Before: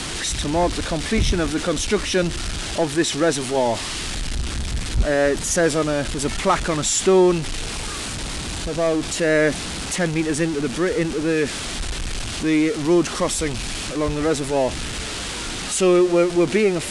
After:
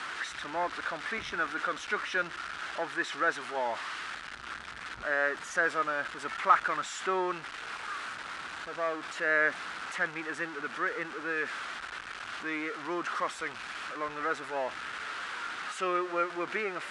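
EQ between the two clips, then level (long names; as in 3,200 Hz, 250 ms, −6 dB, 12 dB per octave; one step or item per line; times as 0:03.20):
resonant band-pass 1,400 Hz, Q 2.8
+1.0 dB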